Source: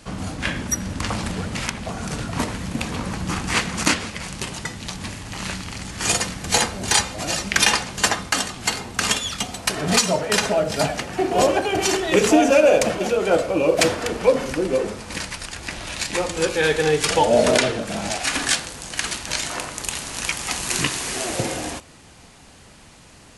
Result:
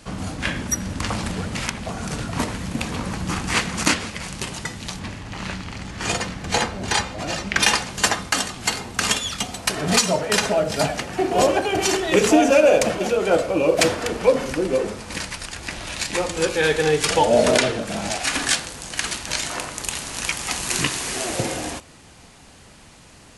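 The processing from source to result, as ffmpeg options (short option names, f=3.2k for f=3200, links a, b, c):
-filter_complex "[0:a]asplit=3[a][b][c];[a]afade=t=out:st=4.99:d=0.02[d];[b]aemphasis=mode=reproduction:type=50fm,afade=t=in:st=4.99:d=0.02,afade=t=out:st=7.62:d=0.02[e];[c]afade=t=in:st=7.62:d=0.02[f];[d][e][f]amix=inputs=3:normalize=0"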